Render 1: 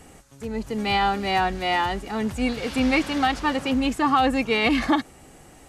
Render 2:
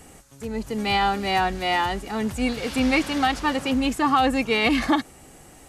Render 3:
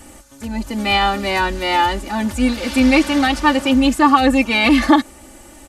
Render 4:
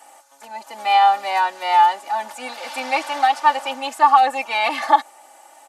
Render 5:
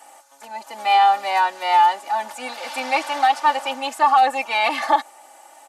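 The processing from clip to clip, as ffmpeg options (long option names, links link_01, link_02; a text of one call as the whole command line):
ffmpeg -i in.wav -af "highshelf=frequency=7200:gain=6" out.wav
ffmpeg -i in.wav -af "aecho=1:1:3.4:0.87,volume=4dB" out.wav
ffmpeg -i in.wav -af "highpass=frequency=780:width_type=q:width=4.2,volume=-7dB" out.wav
ffmpeg -i in.wav -af "apsyclip=9dB,volume=-8.5dB" out.wav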